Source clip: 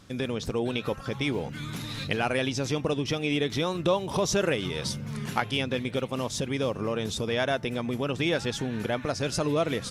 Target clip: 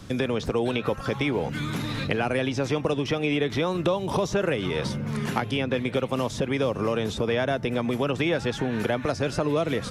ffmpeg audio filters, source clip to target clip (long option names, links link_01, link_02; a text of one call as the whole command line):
ffmpeg -i in.wav -filter_complex "[0:a]acrossover=split=240|490|2600[link_01][link_02][link_03][link_04];[link_01]acompressor=threshold=-44dB:ratio=4[link_05];[link_02]acompressor=threshold=-41dB:ratio=4[link_06];[link_03]acompressor=threshold=-35dB:ratio=4[link_07];[link_04]acompressor=threshold=-49dB:ratio=4[link_08];[link_05][link_06][link_07][link_08]amix=inputs=4:normalize=0,lowshelf=frequency=470:gain=5,volume=7dB" out.wav